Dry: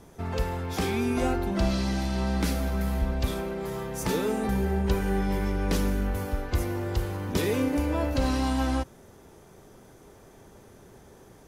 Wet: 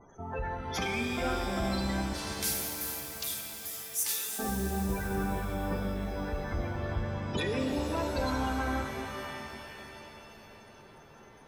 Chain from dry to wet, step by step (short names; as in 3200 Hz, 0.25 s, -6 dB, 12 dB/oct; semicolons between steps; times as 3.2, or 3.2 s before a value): 2.13–4.39 pre-emphasis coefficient 0.97; spectral gate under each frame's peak -20 dB strong; tilt shelf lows -8 dB; soft clip -22.5 dBFS, distortion -22 dB; shimmer reverb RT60 3.2 s, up +7 st, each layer -2 dB, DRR 5 dB